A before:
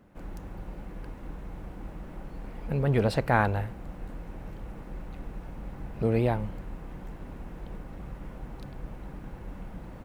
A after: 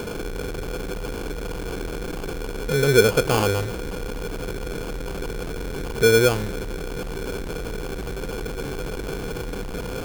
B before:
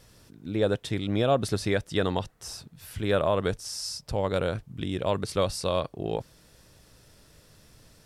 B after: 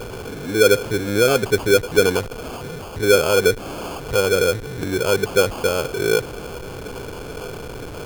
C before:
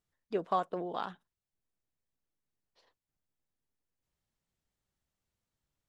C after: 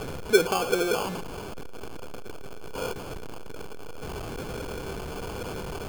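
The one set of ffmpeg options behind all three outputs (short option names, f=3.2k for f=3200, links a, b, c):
-af "aeval=exprs='val(0)+0.5*0.0376*sgn(val(0))':c=same,superequalizer=6b=1.58:7b=3.98:16b=0.251,acrusher=samples=23:mix=1:aa=0.000001"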